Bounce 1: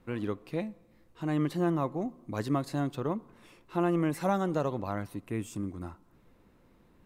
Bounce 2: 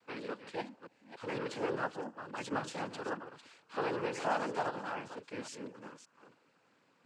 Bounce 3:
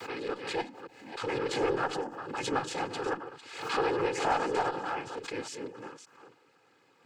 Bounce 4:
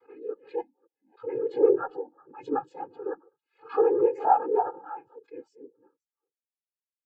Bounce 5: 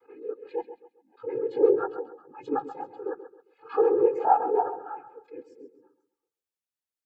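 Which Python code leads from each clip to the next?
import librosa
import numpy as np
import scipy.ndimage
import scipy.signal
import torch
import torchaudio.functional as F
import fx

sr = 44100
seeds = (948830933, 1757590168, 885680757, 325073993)

y1 = fx.reverse_delay(x, sr, ms=288, wet_db=-10.5)
y1 = fx.noise_vocoder(y1, sr, seeds[0], bands=8)
y1 = fx.highpass(y1, sr, hz=980.0, slope=6)
y1 = F.gain(torch.from_numpy(y1), 1.0).numpy()
y2 = y1 + 0.53 * np.pad(y1, (int(2.4 * sr / 1000.0), 0))[:len(y1)]
y2 = fx.tube_stage(y2, sr, drive_db=22.0, bias=0.4)
y2 = fx.pre_swell(y2, sr, db_per_s=71.0)
y2 = F.gain(torch.from_numpy(y2), 5.5).numpy()
y3 = fx.spectral_expand(y2, sr, expansion=2.5)
y3 = F.gain(torch.from_numpy(y3), 8.0).numpy()
y4 = fx.echo_feedback(y3, sr, ms=134, feedback_pct=33, wet_db=-12.5)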